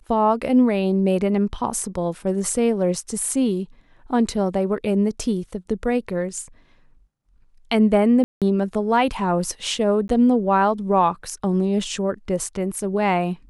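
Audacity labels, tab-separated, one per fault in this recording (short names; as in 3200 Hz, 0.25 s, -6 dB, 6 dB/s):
8.240000	8.420000	gap 0.177 s
10.080000	10.090000	gap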